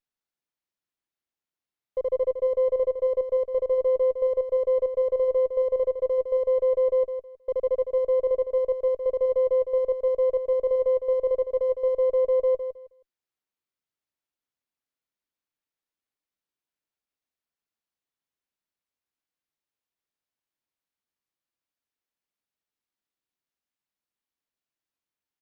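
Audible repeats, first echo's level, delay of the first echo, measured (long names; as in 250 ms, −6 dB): 3, −8.0 dB, 159 ms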